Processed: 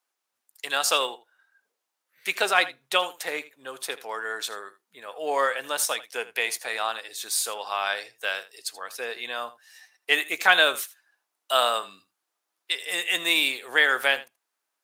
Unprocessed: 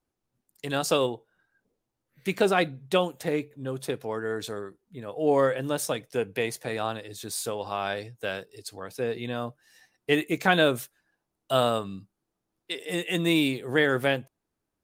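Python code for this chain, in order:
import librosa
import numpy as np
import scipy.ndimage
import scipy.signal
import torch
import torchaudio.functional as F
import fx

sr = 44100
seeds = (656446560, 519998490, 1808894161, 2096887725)

p1 = scipy.signal.sosfilt(scipy.signal.butter(2, 1000.0, 'highpass', fs=sr, output='sos'), x)
p2 = p1 + fx.echo_single(p1, sr, ms=80, db=-17.0, dry=0)
y = F.gain(torch.from_numpy(p2), 7.0).numpy()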